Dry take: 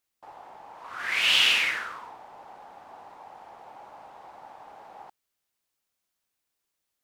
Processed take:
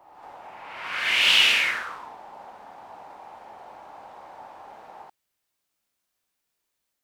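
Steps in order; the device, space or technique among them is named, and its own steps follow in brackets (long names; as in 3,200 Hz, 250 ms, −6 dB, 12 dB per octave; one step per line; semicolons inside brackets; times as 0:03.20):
reverse reverb (reversed playback; convolution reverb RT60 1.3 s, pre-delay 19 ms, DRR 0 dB; reversed playback)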